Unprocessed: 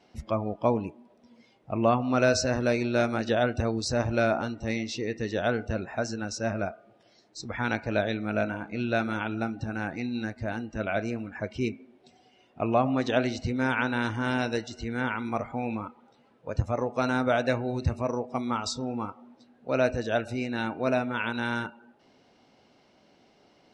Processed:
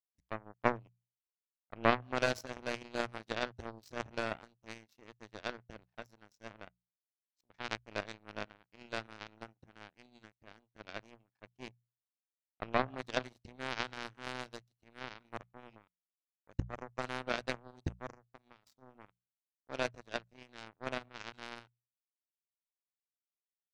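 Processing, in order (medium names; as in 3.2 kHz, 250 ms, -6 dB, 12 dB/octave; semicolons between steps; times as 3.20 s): 18.11–18.80 s: compression 5:1, threshold -30 dBFS, peak gain reduction 6.5 dB; power-law waveshaper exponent 3; hum notches 60/120/180 Hz; trim +3 dB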